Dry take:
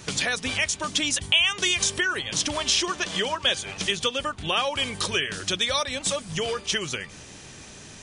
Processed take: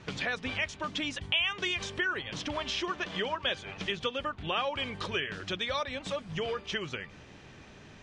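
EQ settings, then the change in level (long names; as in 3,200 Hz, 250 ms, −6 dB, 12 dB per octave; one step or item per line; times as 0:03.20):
low-pass filter 2,800 Hz 12 dB per octave
−5.0 dB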